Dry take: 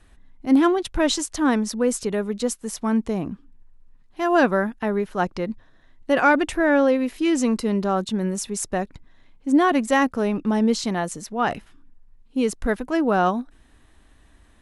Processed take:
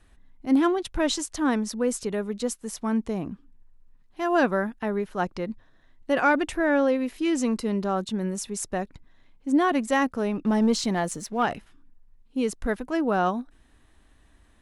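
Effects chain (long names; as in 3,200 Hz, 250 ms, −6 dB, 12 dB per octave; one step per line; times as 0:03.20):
0:10.45–0:11.46: leveller curve on the samples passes 1
level −4 dB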